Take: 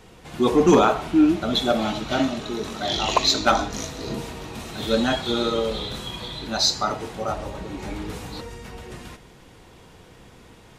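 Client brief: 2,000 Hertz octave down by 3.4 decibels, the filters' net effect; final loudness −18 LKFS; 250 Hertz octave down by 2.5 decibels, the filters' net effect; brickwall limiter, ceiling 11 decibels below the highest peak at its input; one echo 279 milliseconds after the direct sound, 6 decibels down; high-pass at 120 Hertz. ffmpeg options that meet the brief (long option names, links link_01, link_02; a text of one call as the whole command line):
ffmpeg -i in.wav -af "highpass=120,equalizer=frequency=250:width_type=o:gain=-3,equalizer=frequency=2000:width_type=o:gain=-5,alimiter=limit=-17.5dB:level=0:latency=1,aecho=1:1:279:0.501,volume=10dB" out.wav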